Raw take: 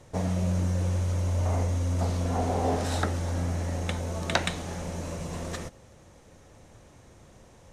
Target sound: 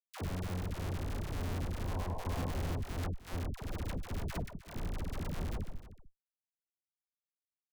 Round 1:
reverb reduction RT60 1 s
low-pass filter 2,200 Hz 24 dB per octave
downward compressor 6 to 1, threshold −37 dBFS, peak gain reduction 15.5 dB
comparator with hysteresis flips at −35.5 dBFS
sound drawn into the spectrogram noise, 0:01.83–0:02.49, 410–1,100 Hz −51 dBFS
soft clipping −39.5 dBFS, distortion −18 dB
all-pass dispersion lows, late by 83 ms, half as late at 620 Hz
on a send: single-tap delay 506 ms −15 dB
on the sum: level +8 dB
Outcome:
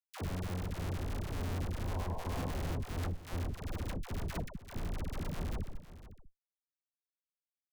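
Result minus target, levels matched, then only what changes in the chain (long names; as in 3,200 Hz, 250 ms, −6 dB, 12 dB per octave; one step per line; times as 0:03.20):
echo 199 ms late
change: single-tap delay 307 ms −15 dB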